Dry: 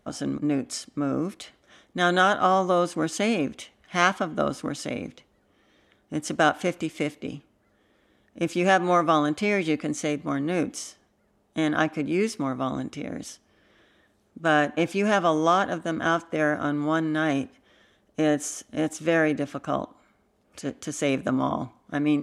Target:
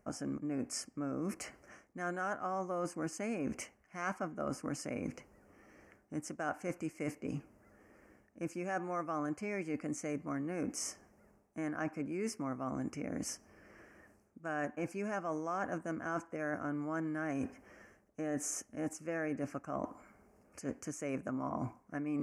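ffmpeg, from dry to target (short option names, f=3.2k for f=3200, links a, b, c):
-af "areverse,acompressor=threshold=-38dB:ratio=6,areverse,asuperstop=centerf=3600:order=4:qfactor=1.3,volume=2dB"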